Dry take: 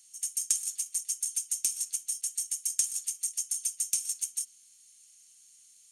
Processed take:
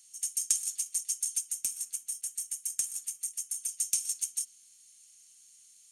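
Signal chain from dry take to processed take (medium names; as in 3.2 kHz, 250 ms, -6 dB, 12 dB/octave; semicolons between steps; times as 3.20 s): 1.40–3.69 s: dynamic bell 4.6 kHz, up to -7 dB, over -45 dBFS, Q 0.71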